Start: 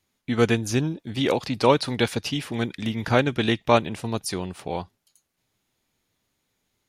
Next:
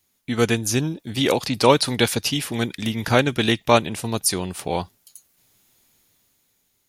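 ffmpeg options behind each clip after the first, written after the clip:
ffmpeg -i in.wav -af "aemphasis=mode=production:type=50kf,dynaudnorm=framelen=210:gausssize=9:maxgain=8dB" out.wav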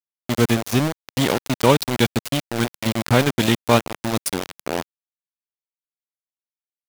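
ffmpeg -i in.wav -af "bass=frequency=250:gain=10,treble=frequency=4000:gain=-2,aeval=exprs='val(0)*gte(abs(val(0)),0.168)':channel_layout=same,lowshelf=frequency=100:gain=-8,volume=-1dB" out.wav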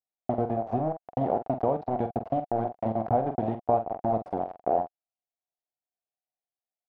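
ffmpeg -i in.wav -filter_complex "[0:a]acompressor=threshold=-22dB:ratio=10,lowpass=frequency=720:width_type=q:width=8,asplit=2[link_01][link_02];[link_02]adelay=45,volume=-9dB[link_03];[link_01][link_03]amix=inputs=2:normalize=0,volume=-5dB" out.wav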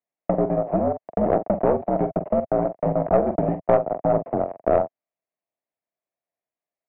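ffmpeg -i in.wav -af "equalizer=frequency=1500:width_type=o:width=0.32:gain=-7,highpass=frequency=180:width_type=q:width=0.5412,highpass=frequency=180:width_type=q:width=1.307,lowpass=frequency=2400:width_type=q:width=0.5176,lowpass=frequency=2400:width_type=q:width=0.7071,lowpass=frequency=2400:width_type=q:width=1.932,afreqshift=-60,aeval=exprs='(tanh(5.62*val(0)+0.4)-tanh(0.4))/5.62':channel_layout=same,volume=8.5dB" out.wav

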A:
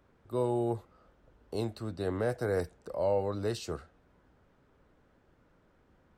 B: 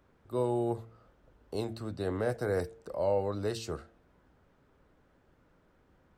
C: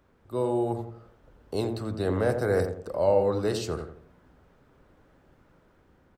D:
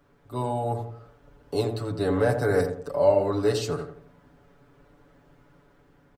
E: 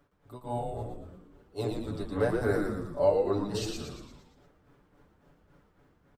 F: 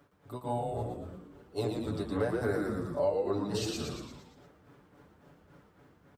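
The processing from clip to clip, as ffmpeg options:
ffmpeg -i in.wav -af "bandreject=frequency=113.4:width_type=h:width=4,bandreject=frequency=226.8:width_type=h:width=4,bandreject=frequency=340.2:width_type=h:width=4,bandreject=frequency=453.6:width_type=h:width=4,bandreject=frequency=567:width_type=h:width=4,bandreject=frequency=680.4:width_type=h:width=4" out.wav
ffmpeg -i in.wav -filter_complex "[0:a]dynaudnorm=framelen=360:gausssize=5:maxgain=3.5dB,asplit=2[link_01][link_02];[link_02]adelay=86,lowpass=frequency=1100:poles=1,volume=-6dB,asplit=2[link_03][link_04];[link_04]adelay=86,lowpass=frequency=1100:poles=1,volume=0.42,asplit=2[link_05][link_06];[link_06]adelay=86,lowpass=frequency=1100:poles=1,volume=0.42,asplit=2[link_07][link_08];[link_08]adelay=86,lowpass=frequency=1100:poles=1,volume=0.42,asplit=2[link_09][link_10];[link_10]adelay=86,lowpass=frequency=1100:poles=1,volume=0.42[link_11];[link_03][link_05][link_07][link_09][link_11]amix=inputs=5:normalize=0[link_12];[link_01][link_12]amix=inputs=2:normalize=0,volume=2dB" out.wav
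ffmpeg -i in.wav -af "aecho=1:1:7:0.96" out.wav
ffmpeg -i in.wav -filter_complex "[0:a]tremolo=f=3.6:d=0.97,asplit=2[link_01][link_02];[link_02]asplit=7[link_03][link_04][link_05][link_06][link_07][link_08][link_09];[link_03]adelay=115,afreqshift=-100,volume=-3.5dB[link_10];[link_04]adelay=230,afreqshift=-200,volume=-9.3dB[link_11];[link_05]adelay=345,afreqshift=-300,volume=-15.2dB[link_12];[link_06]adelay=460,afreqshift=-400,volume=-21dB[link_13];[link_07]adelay=575,afreqshift=-500,volume=-26.9dB[link_14];[link_08]adelay=690,afreqshift=-600,volume=-32.7dB[link_15];[link_09]adelay=805,afreqshift=-700,volume=-38.6dB[link_16];[link_10][link_11][link_12][link_13][link_14][link_15][link_16]amix=inputs=7:normalize=0[link_17];[link_01][link_17]amix=inputs=2:normalize=0,volume=-3.5dB" out.wav
ffmpeg -i in.wav -af "acompressor=threshold=-35dB:ratio=2.5,highpass=72,volume=4.5dB" out.wav

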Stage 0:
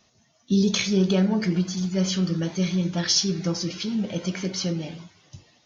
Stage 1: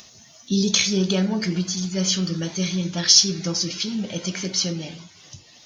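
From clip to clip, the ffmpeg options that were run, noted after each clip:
ffmpeg -i in.wav -af "highshelf=frequency=3200:gain=12,acompressor=mode=upward:threshold=-37dB:ratio=2.5,volume=-1dB" out.wav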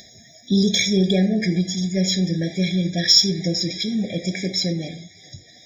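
ffmpeg -i in.wav -filter_complex "[0:a]asplit=2[link_01][link_02];[link_02]asoftclip=type=tanh:threshold=-16.5dB,volume=-10dB[link_03];[link_01][link_03]amix=inputs=2:normalize=0,afftfilt=real='re*eq(mod(floor(b*sr/1024/810),2),0)':imag='im*eq(mod(floor(b*sr/1024/810),2),0)':win_size=1024:overlap=0.75,volume=1.5dB" out.wav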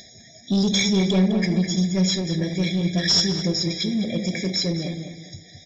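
ffmpeg -i in.wav -filter_complex "[0:a]aresample=16000,asoftclip=type=tanh:threshold=-14.5dB,aresample=44100,asplit=2[link_01][link_02];[link_02]adelay=206,lowpass=frequency=2600:poles=1,volume=-6.5dB,asplit=2[link_03][link_04];[link_04]adelay=206,lowpass=frequency=2600:poles=1,volume=0.32,asplit=2[link_05][link_06];[link_06]adelay=206,lowpass=frequency=2600:poles=1,volume=0.32,asplit=2[link_07][link_08];[link_08]adelay=206,lowpass=frequency=2600:poles=1,volume=0.32[link_09];[link_01][link_03][link_05][link_07][link_09]amix=inputs=5:normalize=0" out.wav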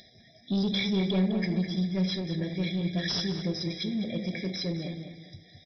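ffmpeg -i in.wav -af "aresample=11025,aresample=44100,volume=-7dB" out.wav

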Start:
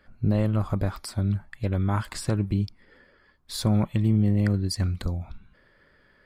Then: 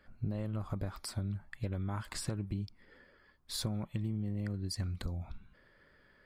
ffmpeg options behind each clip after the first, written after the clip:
ffmpeg -i in.wav -af "acompressor=threshold=-28dB:ratio=6,volume=-4.5dB" out.wav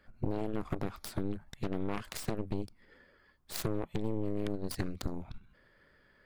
ffmpeg -i in.wav -af "aeval=exprs='0.0794*(cos(1*acos(clip(val(0)/0.0794,-1,1)))-cos(1*PI/2))+0.00794*(cos(6*acos(clip(val(0)/0.0794,-1,1)))-cos(6*PI/2))+0.02*(cos(7*acos(clip(val(0)/0.0794,-1,1)))-cos(7*PI/2))+0.0141*(cos(8*acos(clip(val(0)/0.0794,-1,1)))-cos(8*PI/2))':channel_layout=same,volume=2dB" out.wav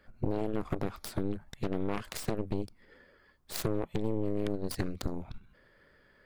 ffmpeg -i in.wav -af "equalizer=frequency=480:width_type=o:width=0.87:gain=2.5,volume=1.5dB" out.wav

